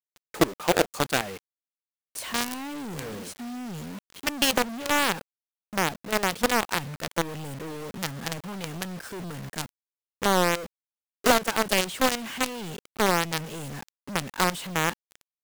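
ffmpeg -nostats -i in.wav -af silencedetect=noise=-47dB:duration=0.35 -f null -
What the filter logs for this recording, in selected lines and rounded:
silence_start: 1.39
silence_end: 2.15 | silence_duration: 0.76
silence_start: 5.21
silence_end: 5.73 | silence_duration: 0.51
silence_start: 9.69
silence_end: 10.22 | silence_duration: 0.53
silence_start: 10.66
silence_end: 11.24 | silence_duration: 0.58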